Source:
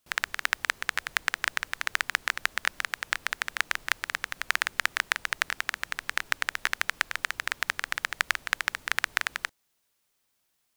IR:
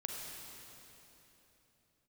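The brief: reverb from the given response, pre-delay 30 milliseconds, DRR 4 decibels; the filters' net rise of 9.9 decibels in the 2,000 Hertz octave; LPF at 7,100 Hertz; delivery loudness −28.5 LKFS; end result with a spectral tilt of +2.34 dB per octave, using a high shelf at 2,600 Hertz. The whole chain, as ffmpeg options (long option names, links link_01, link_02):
-filter_complex "[0:a]lowpass=7100,equalizer=frequency=2000:width_type=o:gain=8.5,highshelf=frequency=2600:gain=8.5,asplit=2[link_01][link_02];[1:a]atrim=start_sample=2205,adelay=30[link_03];[link_02][link_03]afir=irnorm=-1:irlink=0,volume=-4.5dB[link_04];[link_01][link_04]amix=inputs=2:normalize=0,volume=-9.5dB"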